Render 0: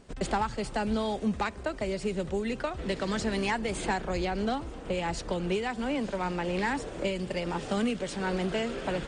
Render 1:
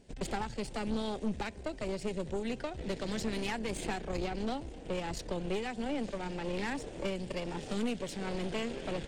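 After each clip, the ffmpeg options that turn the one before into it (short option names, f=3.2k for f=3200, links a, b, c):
-af "equalizer=f=1.2k:w=2.6:g=-14.5,aeval=exprs='(tanh(25.1*val(0)+0.75)-tanh(0.75))/25.1':c=same"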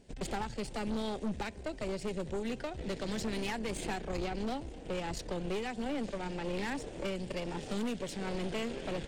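-af "volume=28dB,asoftclip=hard,volume=-28dB"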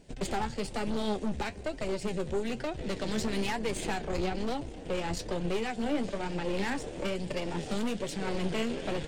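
-af "flanger=delay=5.8:depth=8.3:regen=50:speed=1.1:shape=triangular,volume=8dB"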